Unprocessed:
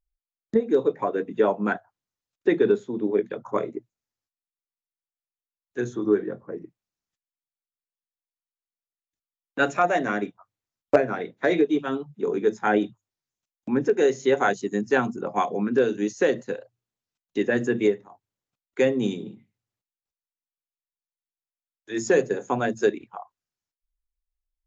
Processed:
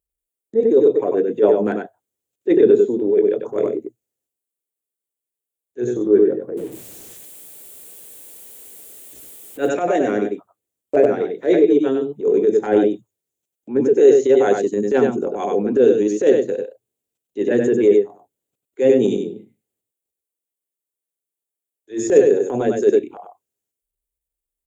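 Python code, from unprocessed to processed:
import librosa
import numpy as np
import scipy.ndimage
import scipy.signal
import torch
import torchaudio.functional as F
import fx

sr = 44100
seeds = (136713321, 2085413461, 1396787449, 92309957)

y = fx.zero_step(x, sr, step_db=-38.5, at=(6.57, 9.59))
y = scipy.signal.sosfilt(scipy.signal.butter(2, 41.0, 'highpass', fs=sr, output='sos'), y)
y = y + 10.0 ** (-6.5 / 20.0) * np.pad(y, (int(96 * sr / 1000.0), 0))[:len(y)]
y = fx.transient(y, sr, attack_db=-12, sustain_db=1)
y = fx.curve_eq(y, sr, hz=(180.0, 430.0, 1100.0, 3300.0, 5200.0, 8100.0), db=(0, 11, -7, 0, -6, 9))
y = y * 10.0 ** (1.5 / 20.0)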